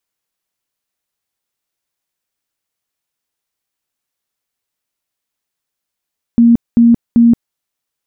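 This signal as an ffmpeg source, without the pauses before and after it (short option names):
-f lavfi -i "aevalsrc='0.631*sin(2*PI*234*mod(t,0.39))*lt(mod(t,0.39),41/234)':d=1.17:s=44100"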